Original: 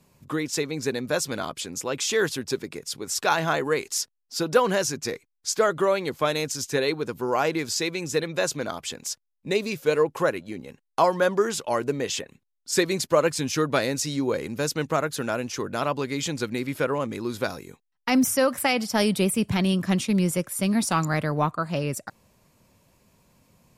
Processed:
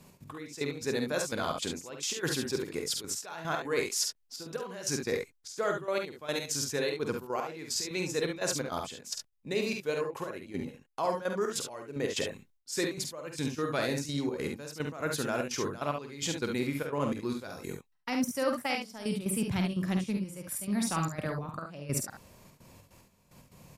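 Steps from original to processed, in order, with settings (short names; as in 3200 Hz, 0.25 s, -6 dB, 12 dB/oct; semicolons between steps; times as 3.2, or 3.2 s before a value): reverse; compressor 6:1, threshold -34 dBFS, peak gain reduction 19 dB; reverse; step gate "x.x...x.xxxx.x" 148 bpm -12 dB; early reflections 49 ms -6 dB, 70 ms -6.5 dB; gain +4.5 dB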